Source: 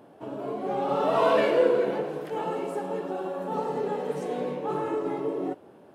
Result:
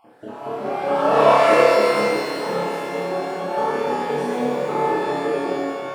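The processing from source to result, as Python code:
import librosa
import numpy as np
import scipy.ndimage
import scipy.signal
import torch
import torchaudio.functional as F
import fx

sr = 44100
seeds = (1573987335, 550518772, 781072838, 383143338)

y = fx.spec_dropout(x, sr, seeds[0], share_pct=37)
y = fx.room_flutter(y, sr, wall_m=4.9, rt60_s=0.68)
y = fx.rev_shimmer(y, sr, seeds[1], rt60_s=1.8, semitones=12, shimmer_db=-8, drr_db=-2.5)
y = F.gain(torch.from_numpy(y), 1.5).numpy()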